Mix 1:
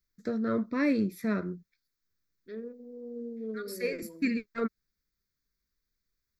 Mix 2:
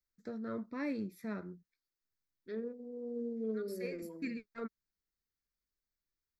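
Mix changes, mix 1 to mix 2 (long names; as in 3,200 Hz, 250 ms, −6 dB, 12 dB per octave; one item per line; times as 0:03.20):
first voice −11.0 dB
master: add parametric band 830 Hz +9 dB 0.31 octaves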